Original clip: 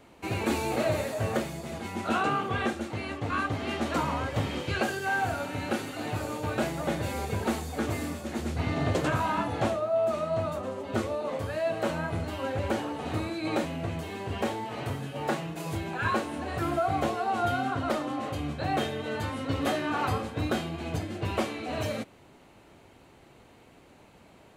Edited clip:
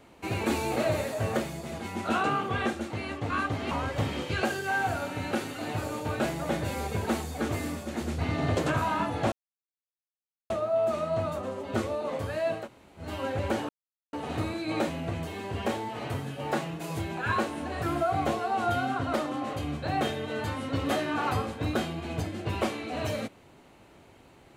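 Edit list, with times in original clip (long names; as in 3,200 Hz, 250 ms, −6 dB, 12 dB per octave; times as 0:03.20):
0:03.71–0:04.09: remove
0:09.70: splice in silence 1.18 s
0:11.81–0:12.24: fill with room tone, crossfade 0.16 s
0:12.89: splice in silence 0.44 s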